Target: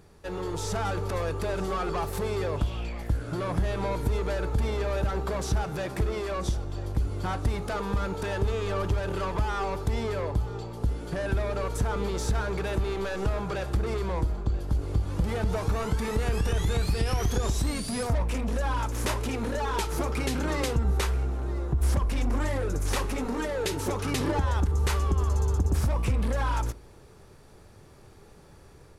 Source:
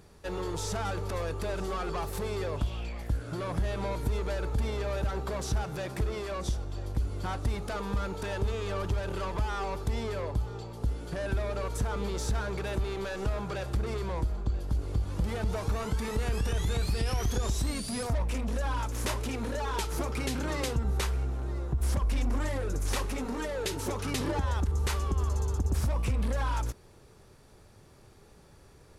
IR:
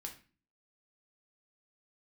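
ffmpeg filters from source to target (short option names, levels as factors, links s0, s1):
-filter_complex "[0:a]dynaudnorm=f=390:g=3:m=1.5,asplit=2[s0][s1];[1:a]atrim=start_sample=2205,lowpass=3100[s2];[s1][s2]afir=irnorm=-1:irlink=0,volume=0.473[s3];[s0][s3]amix=inputs=2:normalize=0,volume=0.841"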